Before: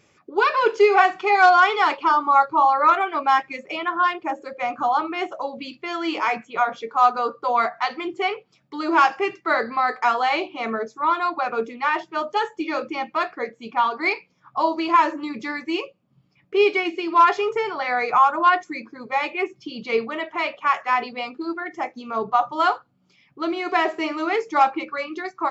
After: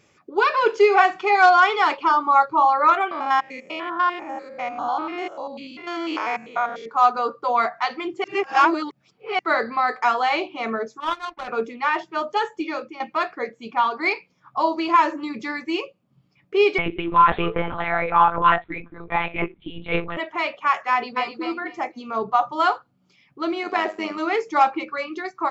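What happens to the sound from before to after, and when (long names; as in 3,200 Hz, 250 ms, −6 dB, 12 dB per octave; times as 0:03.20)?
0:03.11–0:06.86: spectrum averaged block by block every 100 ms
0:08.24–0:09.39: reverse
0:11.00–0:11.48: power curve on the samples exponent 2
0:12.60–0:13.00: fade out, to −13.5 dB
0:16.78–0:20.17: one-pitch LPC vocoder at 8 kHz 170 Hz
0:20.91–0:21.41: delay throw 250 ms, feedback 20%, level −5 dB
0:23.63–0:24.18: amplitude modulation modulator 100 Hz, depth 40%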